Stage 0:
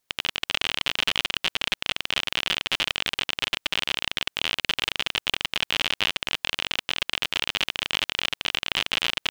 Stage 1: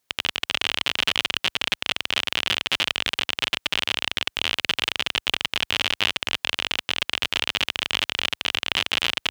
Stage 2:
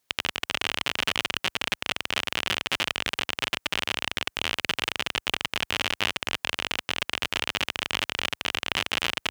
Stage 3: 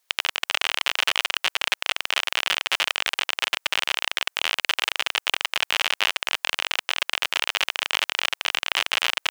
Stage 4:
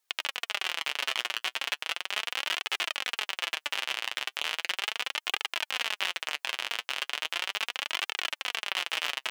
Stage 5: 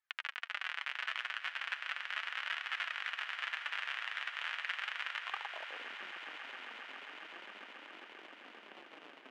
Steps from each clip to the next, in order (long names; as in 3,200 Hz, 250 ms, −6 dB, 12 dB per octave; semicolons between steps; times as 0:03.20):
high-pass filter 53 Hz 12 dB per octave; level +2 dB
dynamic equaliser 3,500 Hz, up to −6 dB, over −35 dBFS, Q 1.3
high-pass filter 620 Hz 12 dB per octave; level +4 dB
flanger 0.37 Hz, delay 2.2 ms, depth 6.5 ms, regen +38%; level −3.5 dB
band-pass filter sweep 1,600 Hz → 260 Hz, 0:05.17–0:05.95; echo that builds up and dies away 135 ms, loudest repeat 8, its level −16 dB; level −1.5 dB